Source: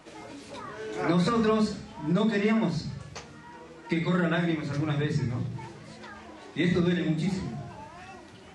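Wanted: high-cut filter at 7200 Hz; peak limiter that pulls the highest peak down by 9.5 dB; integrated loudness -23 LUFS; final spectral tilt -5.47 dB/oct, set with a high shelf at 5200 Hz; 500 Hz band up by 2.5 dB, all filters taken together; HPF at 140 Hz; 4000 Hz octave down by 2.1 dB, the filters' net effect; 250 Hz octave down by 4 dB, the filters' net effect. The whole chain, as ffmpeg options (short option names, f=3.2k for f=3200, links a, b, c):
-af "highpass=140,lowpass=7.2k,equalizer=f=250:t=o:g=-6.5,equalizer=f=500:t=o:g=5.5,equalizer=f=4k:t=o:g=-4.5,highshelf=f=5.2k:g=6,volume=10dB,alimiter=limit=-12dB:level=0:latency=1"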